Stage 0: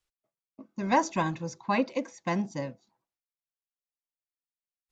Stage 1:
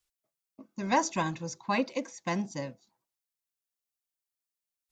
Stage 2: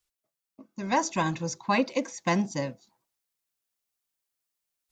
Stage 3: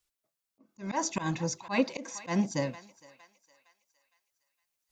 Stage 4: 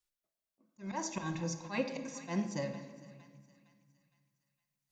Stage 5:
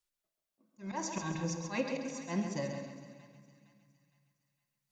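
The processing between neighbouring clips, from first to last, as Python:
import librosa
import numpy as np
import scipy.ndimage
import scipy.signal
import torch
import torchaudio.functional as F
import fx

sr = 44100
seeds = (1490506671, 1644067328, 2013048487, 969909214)

y1 = fx.high_shelf(x, sr, hz=3900.0, db=9.0)
y1 = y1 * librosa.db_to_amplitude(-2.5)
y2 = fx.rider(y1, sr, range_db=10, speed_s=0.5)
y2 = y2 * librosa.db_to_amplitude(4.0)
y3 = fx.echo_thinned(y2, sr, ms=461, feedback_pct=44, hz=760.0, wet_db=-20)
y3 = fx.auto_swell(y3, sr, attack_ms=122.0)
y4 = fx.room_shoebox(y3, sr, seeds[0], volume_m3=1700.0, walls='mixed', distance_m=0.94)
y4 = y4 * librosa.db_to_amplitude(-7.5)
y5 = fx.echo_feedback(y4, sr, ms=135, feedback_pct=39, wet_db=-7)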